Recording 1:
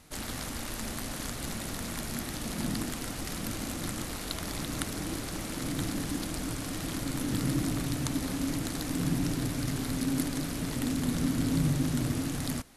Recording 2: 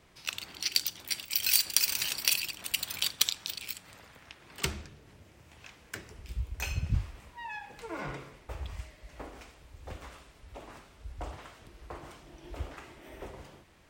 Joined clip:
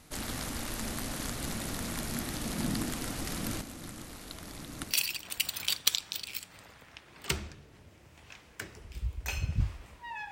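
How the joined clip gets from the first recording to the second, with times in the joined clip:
recording 1
3.61–4.98 s: gate -30 dBFS, range -9 dB
4.93 s: go over to recording 2 from 2.27 s, crossfade 0.10 s

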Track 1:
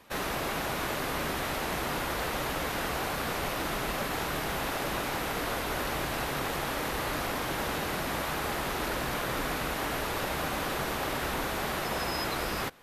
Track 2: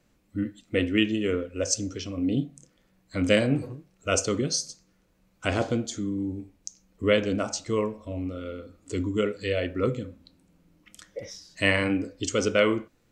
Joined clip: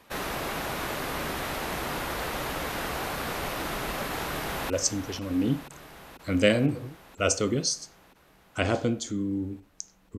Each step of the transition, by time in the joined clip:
track 1
4.23–4.70 s: echo throw 490 ms, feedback 75%, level -10 dB
4.70 s: go over to track 2 from 1.57 s

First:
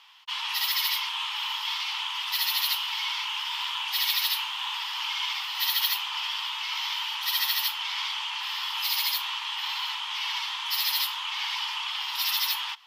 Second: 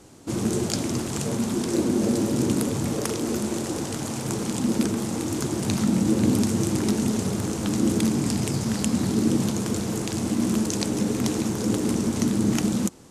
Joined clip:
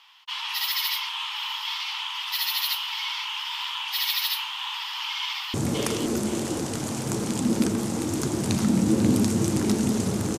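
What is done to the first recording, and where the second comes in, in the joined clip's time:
first
5.22–5.54 s: echo throw 520 ms, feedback 30%, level -5.5 dB
5.54 s: go over to second from 2.73 s

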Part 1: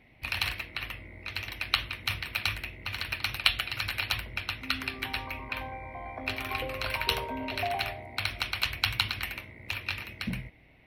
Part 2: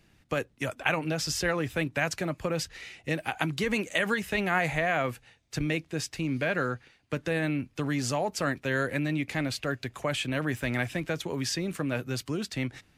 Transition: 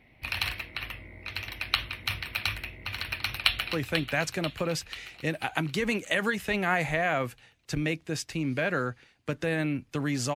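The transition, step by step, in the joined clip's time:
part 1
3.11–3.73 s: echo throw 490 ms, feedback 60%, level -8.5 dB
3.73 s: go over to part 2 from 1.57 s

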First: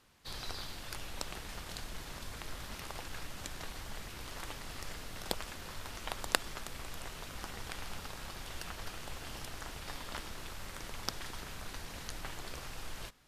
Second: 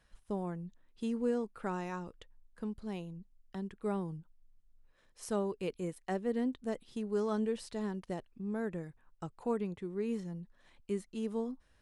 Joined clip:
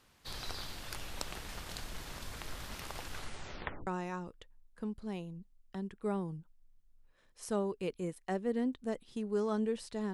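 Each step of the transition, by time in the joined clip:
first
3.10 s: tape stop 0.77 s
3.87 s: go over to second from 1.67 s

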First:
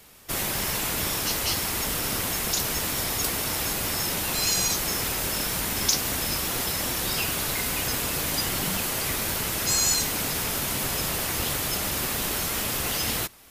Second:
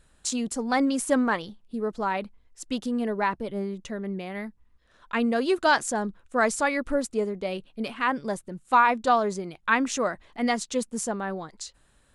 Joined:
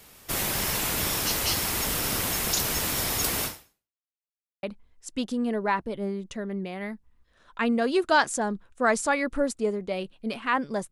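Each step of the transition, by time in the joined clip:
first
3.45–4.06 s: fade out exponential
4.06–4.63 s: mute
4.63 s: go over to second from 2.17 s

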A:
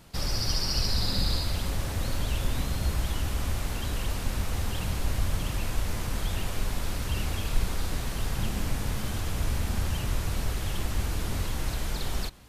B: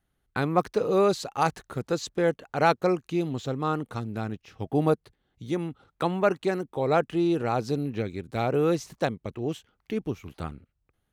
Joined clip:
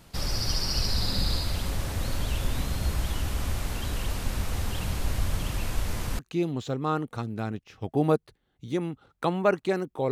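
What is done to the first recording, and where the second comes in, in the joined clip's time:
A
6.19 s: go over to B from 2.97 s

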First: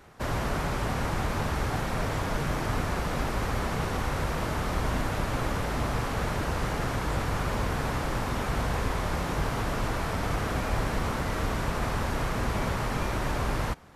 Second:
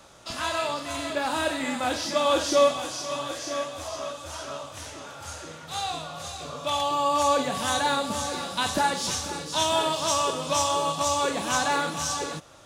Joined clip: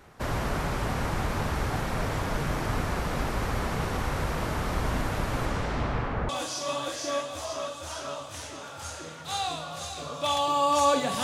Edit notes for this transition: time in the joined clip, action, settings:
first
5.45–6.29 s: low-pass 11 kHz -> 1.5 kHz
6.29 s: go over to second from 2.72 s

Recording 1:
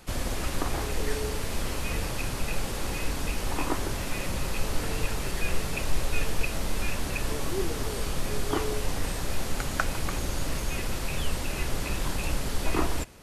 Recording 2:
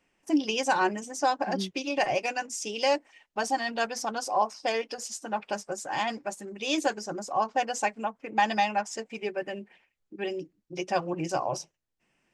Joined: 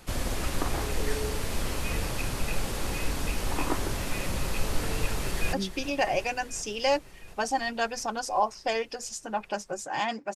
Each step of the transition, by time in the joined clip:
recording 1
5.11–5.53 s: echo throw 360 ms, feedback 80%, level -12.5 dB
5.53 s: go over to recording 2 from 1.52 s

